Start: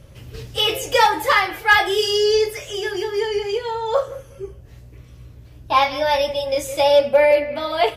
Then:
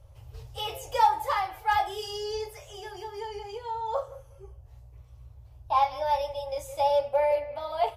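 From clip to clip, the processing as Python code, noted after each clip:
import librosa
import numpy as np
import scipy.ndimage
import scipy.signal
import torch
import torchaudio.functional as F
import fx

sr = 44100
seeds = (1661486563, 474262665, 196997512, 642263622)

y = fx.curve_eq(x, sr, hz=(110.0, 180.0, 830.0, 1700.0, 12000.0), db=(0, -28, 2, -13, -7))
y = y * 10.0 ** (-5.5 / 20.0)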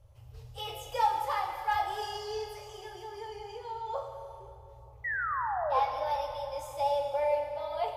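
y = fx.spec_paint(x, sr, seeds[0], shape='fall', start_s=5.04, length_s=0.76, low_hz=480.0, high_hz=2000.0, level_db=-27.0)
y = fx.echo_bbd(y, sr, ms=461, stages=4096, feedback_pct=74, wet_db=-23.5)
y = fx.rev_plate(y, sr, seeds[1], rt60_s=2.3, hf_ratio=0.95, predelay_ms=0, drr_db=4.0)
y = y * 10.0 ** (-6.0 / 20.0)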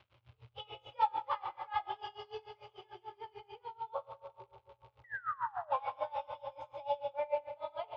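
y = fx.dmg_crackle(x, sr, seeds[2], per_s=280.0, level_db=-44.0)
y = fx.cabinet(y, sr, low_hz=160.0, low_slope=12, high_hz=3200.0, hz=(260.0, 450.0, 700.0, 1800.0), db=(-5, -7, -6, -9))
y = y * 10.0 ** (-25 * (0.5 - 0.5 * np.cos(2.0 * np.pi * 6.8 * np.arange(len(y)) / sr)) / 20.0)
y = y * 10.0 ** (2.0 / 20.0)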